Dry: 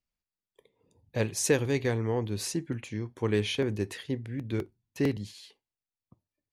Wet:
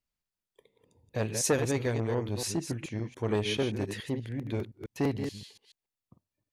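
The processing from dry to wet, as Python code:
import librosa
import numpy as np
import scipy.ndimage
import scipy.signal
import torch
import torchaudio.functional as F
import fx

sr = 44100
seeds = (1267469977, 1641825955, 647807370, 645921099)

y = fx.reverse_delay(x, sr, ms=143, wet_db=-8.0)
y = fx.transformer_sat(y, sr, knee_hz=610.0)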